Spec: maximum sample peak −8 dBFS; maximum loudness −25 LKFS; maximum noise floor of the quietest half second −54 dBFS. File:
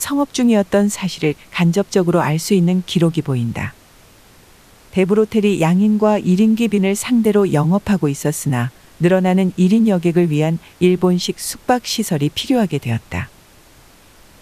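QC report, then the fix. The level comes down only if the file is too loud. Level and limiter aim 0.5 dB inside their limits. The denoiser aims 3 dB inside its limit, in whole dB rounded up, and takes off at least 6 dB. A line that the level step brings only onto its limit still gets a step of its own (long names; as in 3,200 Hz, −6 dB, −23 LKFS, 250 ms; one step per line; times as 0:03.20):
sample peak −3.0 dBFS: out of spec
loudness −16.5 LKFS: out of spec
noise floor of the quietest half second −47 dBFS: out of spec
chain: level −9 dB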